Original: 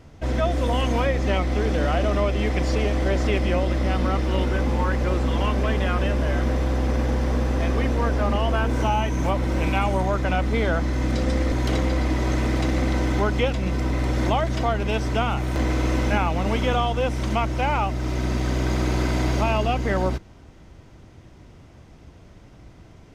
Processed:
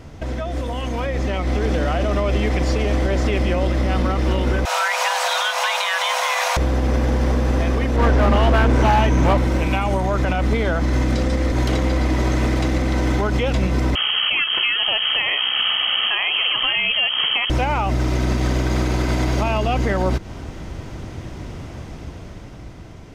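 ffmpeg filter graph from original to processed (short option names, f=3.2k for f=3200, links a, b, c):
-filter_complex "[0:a]asettb=1/sr,asplit=3[a][b][c];[a]atrim=end=4.654[d];[b]atrim=start=4.65:end=6.57,asetpts=PTS-STARTPTS,afade=t=in:d=0.004:c=qsin,afade=t=out:st=1.916:d=0.004:c=qsin,highpass=f=630:p=1,highshelf=f=2.6k:g=11,afreqshift=440[e];[c]atrim=start=6.566[f];[d][e]acrossfade=d=0.004:c1=hsin:c2=qsin[g];[g][f]acrossfade=d=0.004:c1=qsin:c2=hsin,asettb=1/sr,asplit=3[h][i][j];[h]atrim=end=7.964[k];[i]atrim=start=7.96:end=9.38,asetpts=PTS-STARTPTS,afade=t=in:d=0.004:c=qsin,afade=t=out:st=1.416:d=0.004:c=qsin,highshelf=f=7.2k:g=-11.5,volume=19dB,asoftclip=hard,volume=-19dB[l];[j]atrim=start=9.376[m];[k][l]acrossfade=d=0.004:c1=hsin:c2=qsin[n];[n][m]acrossfade=d=0.004:c1=qsin:c2=hsin,asettb=1/sr,asplit=3[o][p][q];[o]atrim=end=13.954[r];[p]atrim=start=13.95:end=17.5,asetpts=PTS-STARTPTS,afade=t=in:d=0.004:c=qsin,afade=t=out:st=3.546:d=0.004:c=qsin,highpass=f=190:p=1,equalizer=f=880:t=o:w=0.74:g=-4.5,lowpass=f=2.8k:t=q:w=0.5098,lowpass=f=2.8k:t=q:w=0.6013,lowpass=f=2.8k:t=q:w=0.9,lowpass=f=2.8k:t=q:w=2.563,afreqshift=-3300[s];[q]atrim=start=17.496[t];[r][s]acrossfade=d=0.004:c1=hsin:c2=qsin[u];[u][t]acrossfade=d=0.004:c1=qsin:c2=hsin,acompressor=threshold=-29dB:ratio=2.5,alimiter=level_in=1.5dB:limit=-24dB:level=0:latency=1:release=147,volume=-1.5dB,dynaudnorm=f=230:g=11:m=7dB,volume=8dB"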